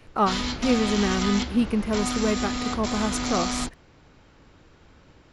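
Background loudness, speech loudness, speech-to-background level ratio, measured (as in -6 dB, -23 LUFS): -28.5 LUFS, -26.0 LUFS, 2.5 dB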